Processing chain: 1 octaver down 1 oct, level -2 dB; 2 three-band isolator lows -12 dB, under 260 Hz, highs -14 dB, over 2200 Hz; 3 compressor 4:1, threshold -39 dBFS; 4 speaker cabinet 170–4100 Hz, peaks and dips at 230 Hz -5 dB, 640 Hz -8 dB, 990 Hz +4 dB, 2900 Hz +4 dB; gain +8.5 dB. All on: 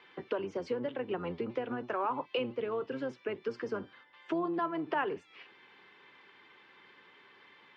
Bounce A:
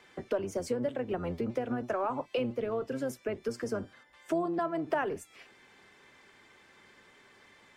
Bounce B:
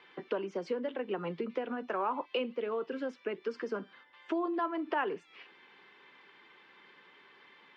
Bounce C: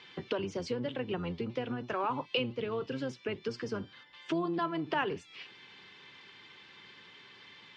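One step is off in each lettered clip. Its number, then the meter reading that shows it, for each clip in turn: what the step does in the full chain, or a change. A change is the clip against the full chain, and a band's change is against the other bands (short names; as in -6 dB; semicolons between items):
4, 125 Hz band +6.0 dB; 1, 125 Hz band -3.5 dB; 2, 125 Hz band +5.5 dB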